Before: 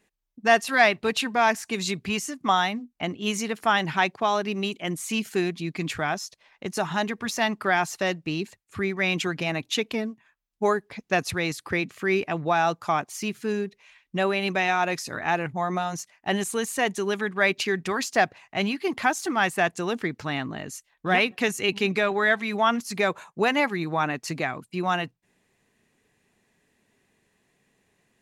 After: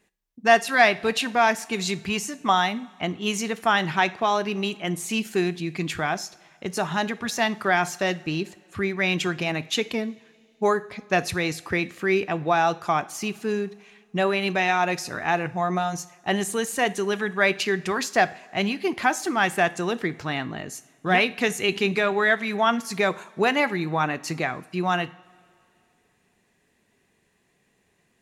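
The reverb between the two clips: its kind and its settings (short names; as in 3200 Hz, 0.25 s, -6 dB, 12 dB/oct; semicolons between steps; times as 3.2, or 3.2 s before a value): two-slope reverb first 0.43 s, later 2.6 s, from -18 dB, DRR 13.5 dB; gain +1 dB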